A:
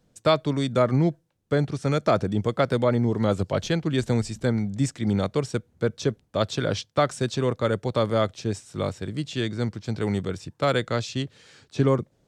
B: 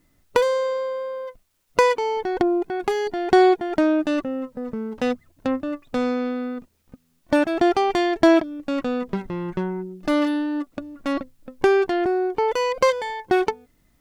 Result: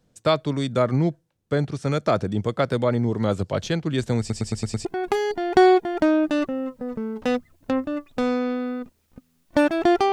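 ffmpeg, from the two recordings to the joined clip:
-filter_complex "[0:a]apad=whole_dur=10.12,atrim=end=10.12,asplit=6[s0][s1][s2][s3][s4][s5];[s0]atrim=end=4.302[s6];[s1]atrim=start=4.188:end=4.302[s7];[s2]atrim=start=4.188:end=4.302[s8];[s3]atrim=start=4.188:end=4.302[s9];[s4]atrim=start=4.188:end=4.302[s10];[s5]atrim=start=4.188:end=4.302[s11];[1:a]atrim=start=2.608:end=7.88[s12];[s6][s7]acrossfade=d=0.004:c1=hsin:c2=hsin[s13];[s13][s8]acrossfade=d=0.004:c1=hsin:c2=hsin[s14];[s14][s9]acrossfade=d=0.004:c1=hsin:c2=hsin[s15];[s15][s10]acrossfade=d=0.004:c1=hsin:c2=hsin[s16];[s16][s11]acrossfade=d=0.004:c1=hsin:c2=hsin[s17];[s17][s12]acrossfade=d=0.004:c1=hsin:c2=hsin"

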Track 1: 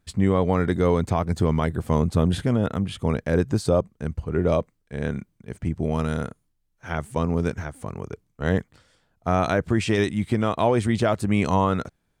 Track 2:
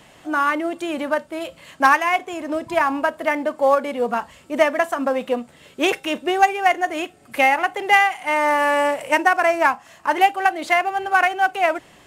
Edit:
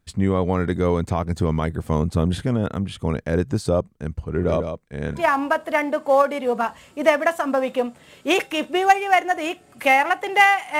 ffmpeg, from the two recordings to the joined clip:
-filter_complex "[0:a]asplit=3[s0][s1][s2];[s0]afade=t=out:st=4.34:d=0.02[s3];[s1]aecho=1:1:148:0.422,afade=t=in:st=4.34:d=0.02,afade=t=out:st=5.26:d=0.02[s4];[s2]afade=t=in:st=5.26:d=0.02[s5];[s3][s4][s5]amix=inputs=3:normalize=0,apad=whole_dur=10.79,atrim=end=10.79,atrim=end=5.26,asetpts=PTS-STARTPTS[s6];[1:a]atrim=start=2.61:end=8.32,asetpts=PTS-STARTPTS[s7];[s6][s7]acrossfade=d=0.18:c1=tri:c2=tri"

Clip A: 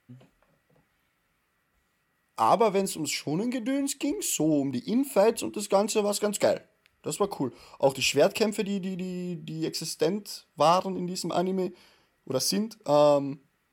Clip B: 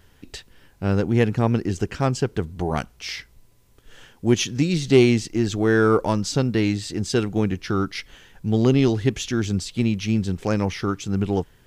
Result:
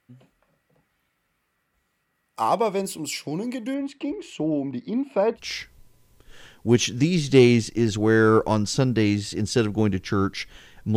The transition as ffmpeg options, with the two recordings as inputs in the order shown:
-filter_complex "[0:a]asettb=1/sr,asplit=3[s0][s1][s2];[s0]atrim=end=3.744[s3];[s1]atrim=start=3.74:end=5.4,asetpts=PTS-STARTPTS,afade=t=in:d=0.004:c=qsin,afade=t=out:st=1.656:d=0.004:c=qsin,lowpass=2600[s4];[s2]atrim=start=5.396[s5];[s3][s4]acrossfade=d=0.004:c1=hsin:c2=qsin[s6];[s6][s5]acrossfade=d=0.004:c1=qsin:c2=hsin,apad=whole_dur=10.96,atrim=end=10.96,atrim=end=5.4,asetpts=PTS-STARTPTS[s7];[1:a]atrim=start=2.92:end=8.54,asetpts=PTS-STARTPTS[s8];[s7][s8]acrossfade=d=0.06:c1=tri:c2=tri"

